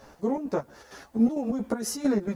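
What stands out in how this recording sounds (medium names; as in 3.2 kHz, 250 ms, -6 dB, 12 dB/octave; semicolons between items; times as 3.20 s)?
chopped level 4.4 Hz, depth 65%, duty 60%; a quantiser's noise floor 12-bit, dither triangular; a shimmering, thickened sound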